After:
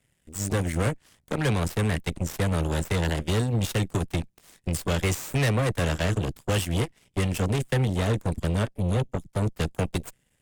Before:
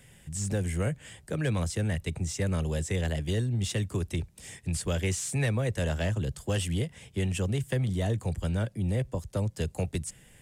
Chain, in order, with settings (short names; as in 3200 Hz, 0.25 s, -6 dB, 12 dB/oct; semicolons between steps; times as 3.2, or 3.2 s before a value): 8.71–9.41 envelope flanger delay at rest 5.8 ms, full sweep at -28 dBFS; added harmonics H 7 -16 dB, 8 -20 dB, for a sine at -18.5 dBFS; gain +3.5 dB